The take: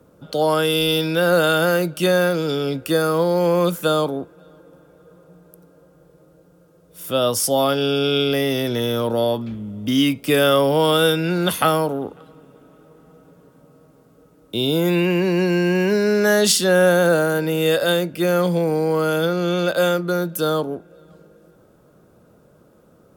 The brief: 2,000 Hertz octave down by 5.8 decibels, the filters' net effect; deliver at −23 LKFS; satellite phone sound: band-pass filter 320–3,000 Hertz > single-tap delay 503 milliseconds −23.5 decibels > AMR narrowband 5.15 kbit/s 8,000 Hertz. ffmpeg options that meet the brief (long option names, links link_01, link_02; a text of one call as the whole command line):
ffmpeg -i in.wav -af "highpass=320,lowpass=3000,equalizer=frequency=2000:width_type=o:gain=-8,aecho=1:1:503:0.0668,volume=-0.5dB" -ar 8000 -c:a libopencore_amrnb -b:a 5150 out.amr